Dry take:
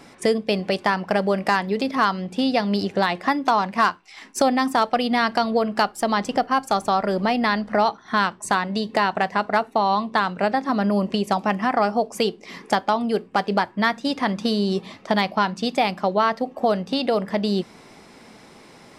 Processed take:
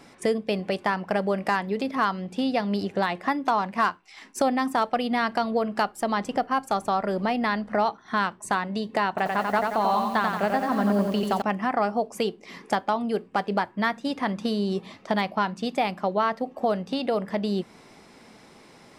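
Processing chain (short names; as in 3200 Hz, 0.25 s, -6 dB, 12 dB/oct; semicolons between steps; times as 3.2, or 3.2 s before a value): dynamic EQ 4900 Hz, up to -5 dB, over -42 dBFS, Q 1.1; 9.09–11.42 lo-fi delay 89 ms, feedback 55%, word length 7-bit, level -3.5 dB; gain -4 dB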